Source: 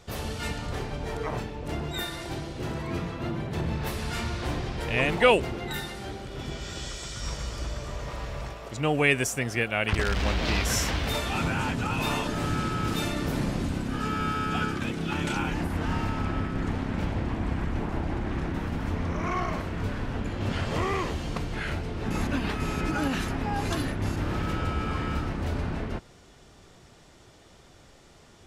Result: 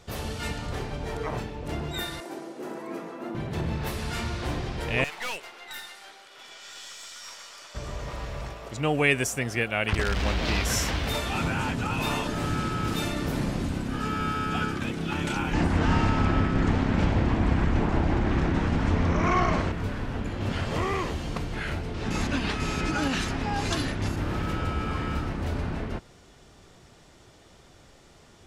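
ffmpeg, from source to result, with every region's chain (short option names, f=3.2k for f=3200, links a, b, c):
-filter_complex "[0:a]asettb=1/sr,asplit=3[a][b][c];[a]atrim=end=2.204[d];[b]atrim=start=2.2:end=3.35,asetpts=PTS-STARTPTS,afade=t=in:d=0.004:c=qsin,afade=t=out:st=1.146:d=0.004:c=qsin,highpass=f=250:w=0.5412,highpass=f=250:w=1.3066,equalizer=f=3.5k:t=o:w=1.8:g=-10.5,asplit=2[e][f];[f]adelay=36,volume=-13dB[g];[e][g]amix=inputs=2:normalize=0,atrim=end_sample=50715[h];[c]atrim=start=3.346[i];[d][h]acrossfade=d=0.004:c1=hsin:c2=qsin[j];[j][i]acrossfade=d=0.004:c1=qsin:c2=hsin,asettb=1/sr,asplit=3[k][l][m];[k]atrim=end=5.044[n];[l]atrim=start=5.04:end=7.75,asetpts=PTS-STARTPTS,afade=t=in:d=0.004:c=qsin,afade=t=out:st=2.706:d=0.004:c=qsin,highpass=1k,aeval=exprs='(tanh(31.6*val(0)+0.6)-tanh(0.6))/31.6':c=same[o];[m]atrim=start=7.746[p];[n][o]acrossfade=d=0.004:c1=hsin:c2=qsin[q];[q][p]acrossfade=d=0.004:c1=qsin:c2=hsin,asettb=1/sr,asplit=3[r][s][t];[r]atrim=end=15.534[u];[s]atrim=start=15.53:end=19.72,asetpts=PTS-STARTPTS,afade=t=in:d=0.004:c=qsin,afade=t=out:st=4.186:d=0.004:c=qsin,acontrast=46,lowpass=f=8.3k:w=0.5412,lowpass=f=8.3k:w=1.3066[v];[t]atrim=start=19.716[w];[u][v]acrossfade=d=0.004:c1=hsin:c2=qsin[x];[x][w]acrossfade=d=0.004:c1=qsin:c2=hsin,asettb=1/sr,asplit=3[y][z][aa];[y]atrim=end=21.944[ab];[z]atrim=start=21.94:end=24.08,asetpts=PTS-STARTPTS,afade=t=in:d=0.004:c=qsin,afade=t=out:st=2.136:d=0.004:c=qsin,lowpass=6.7k,highshelf=f=3.3k:g=10[ac];[aa]atrim=start=24.076[ad];[ab][ac]acrossfade=d=0.004:c1=hsin:c2=qsin[ae];[ae][ad]acrossfade=d=0.004:c1=qsin:c2=hsin"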